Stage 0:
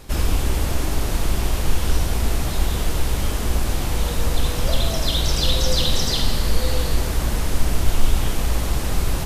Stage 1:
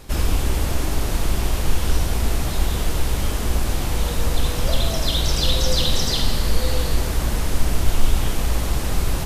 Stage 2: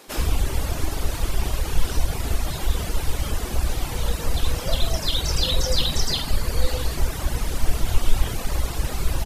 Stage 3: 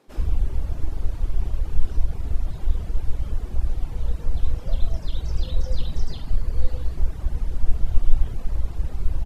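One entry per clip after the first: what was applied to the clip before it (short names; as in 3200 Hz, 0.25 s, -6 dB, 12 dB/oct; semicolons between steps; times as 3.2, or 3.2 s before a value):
nothing audible
reverb removal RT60 1.2 s; bands offset in time highs, lows 80 ms, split 230 Hz
tilt -3 dB/oct; gain -13.5 dB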